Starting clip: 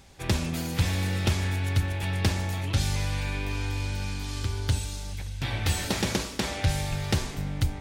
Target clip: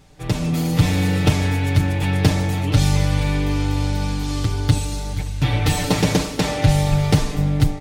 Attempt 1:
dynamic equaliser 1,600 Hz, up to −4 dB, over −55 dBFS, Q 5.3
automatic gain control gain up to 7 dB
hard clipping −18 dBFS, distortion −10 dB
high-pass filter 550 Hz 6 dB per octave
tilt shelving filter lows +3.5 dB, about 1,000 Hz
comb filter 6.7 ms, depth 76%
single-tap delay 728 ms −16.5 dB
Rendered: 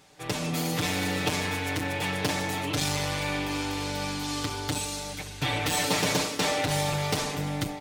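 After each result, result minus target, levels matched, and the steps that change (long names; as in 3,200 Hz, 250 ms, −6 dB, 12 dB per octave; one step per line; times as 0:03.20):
echo 253 ms late; hard clipping: distortion +15 dB; 500 Hz band +3.0 dB
change: single-tap delay 475 ms −16.5 dB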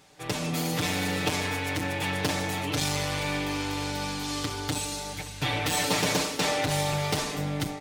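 hard clipping: distortion +15 dB; 500 Hz band +3.5 dB
change: hard clipping −10 dBFS, distortion −25 dB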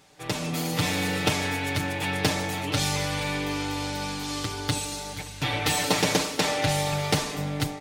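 500 Hz band +3.5 dB
remove: high-pass filter 550 Hz 6 dB per octave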